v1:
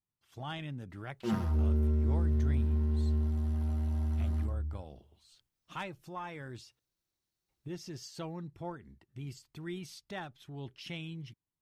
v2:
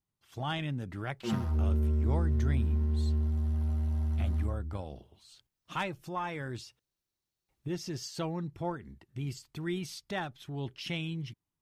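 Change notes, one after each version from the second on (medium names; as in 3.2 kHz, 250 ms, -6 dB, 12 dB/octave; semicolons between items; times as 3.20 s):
speech +6.0 dB; background: send -6.0 dB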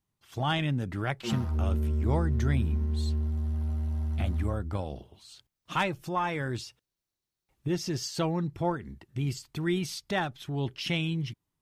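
speech +6.0 dB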